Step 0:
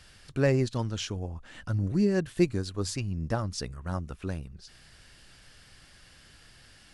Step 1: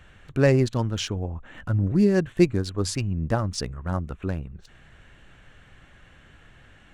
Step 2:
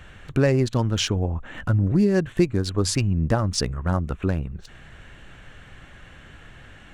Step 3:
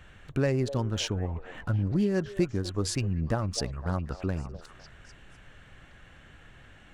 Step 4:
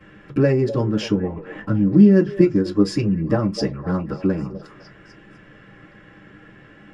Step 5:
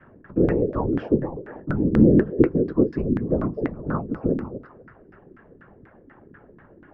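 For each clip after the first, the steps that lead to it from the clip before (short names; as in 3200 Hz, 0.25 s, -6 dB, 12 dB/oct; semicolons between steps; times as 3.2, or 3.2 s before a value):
Wiener smoothing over 9 samples; gain +5.5 dB
compressor 3:1, threshold -24 dBFS, peak gain reduction 9.5 dB; gain +6.5 dB
delay with a stepping band-pass 0.252 s, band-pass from 580 Hz, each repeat 0.7 oct, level -9 dB; gain -7 dB
reverb RT60 0.15 s, pre-delay 3 ms, DRR -10 dB; gain -4 dB
whisperiser; LFO low-pass saw down 4.1 Hz 270–1700 Hz; gain -5 dB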